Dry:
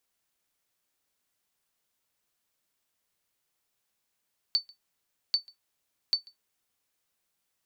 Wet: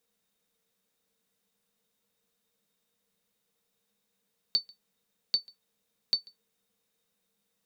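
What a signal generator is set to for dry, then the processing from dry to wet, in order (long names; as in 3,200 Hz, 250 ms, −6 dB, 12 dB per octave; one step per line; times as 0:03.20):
ping with an echo 4,520 Hz, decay 0.13 s, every 0.79 s, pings 3, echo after 0.14 s, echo −26 dB −16 dBFS
hollow resonant body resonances 200/460/3,700 Hz, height 17 dB, ringing for 90 ms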